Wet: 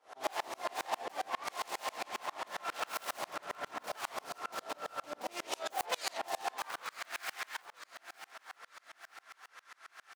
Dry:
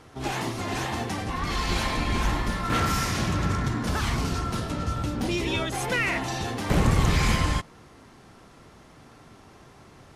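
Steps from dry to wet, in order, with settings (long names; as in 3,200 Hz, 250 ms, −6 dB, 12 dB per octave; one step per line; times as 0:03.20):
phase distortion by the signal itself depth 0.54 ms
downward compressor 5 to 1, threshold −33 dBFS, peak gain reduction 15 dB
high-pass filter sweep 650 Hz → 1,500 Hz, 0:06.30–0:07.02
repeating echo 910 ms, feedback 49%, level −13 dB
tremolo with a ramp in dB swelling 7.4 Hz, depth 32 dB
level +5 dB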